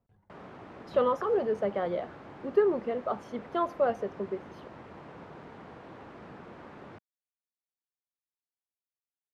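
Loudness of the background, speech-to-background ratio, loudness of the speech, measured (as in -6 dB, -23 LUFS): -48.0 LUFS, 17.5 dB, -30.5 LUFS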